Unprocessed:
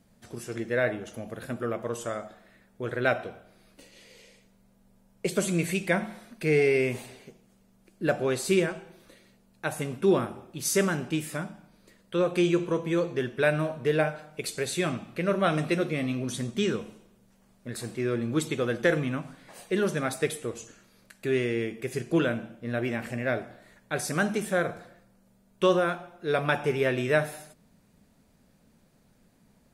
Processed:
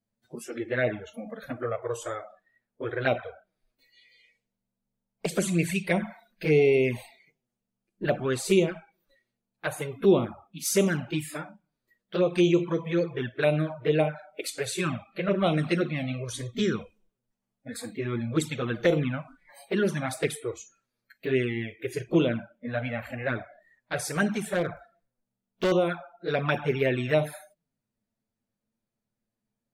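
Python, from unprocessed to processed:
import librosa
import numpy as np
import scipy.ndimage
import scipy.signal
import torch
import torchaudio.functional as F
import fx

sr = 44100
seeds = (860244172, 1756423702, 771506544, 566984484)

y = fx.env_flanger(x, sr, rest_ms=9.2, full_db=-20.0)
y = fx.noise_reduce_blind(y, sr, reduce_db=23)
y = fx.clip_hard(y, sr, threshold_db=-23.5, at=(24.3, 25.72))
y = F.gain(torch.from_numpy(y), 3.0).numpy()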